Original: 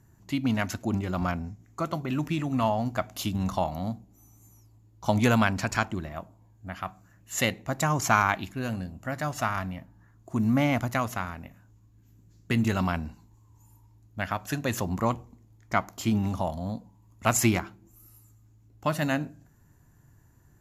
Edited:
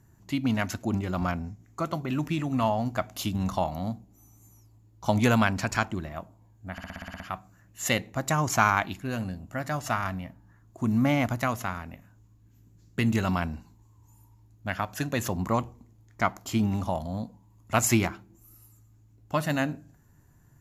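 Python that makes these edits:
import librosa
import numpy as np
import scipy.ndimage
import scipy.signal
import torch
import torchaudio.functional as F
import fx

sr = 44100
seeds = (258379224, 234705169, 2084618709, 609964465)

y = fx.edit(x, sr, fx.stutter(start_s=6.72, slice_s=0.06, count=9), tone=tone)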